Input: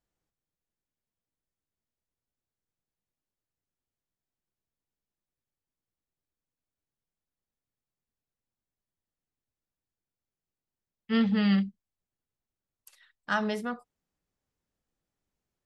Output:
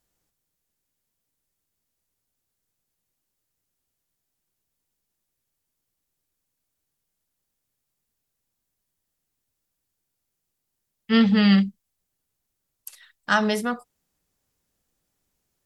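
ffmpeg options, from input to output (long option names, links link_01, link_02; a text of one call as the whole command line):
ffmpeg -i in.wav -af "aemphasis=mode=production:type=cd,volume=7.5dB" out.wav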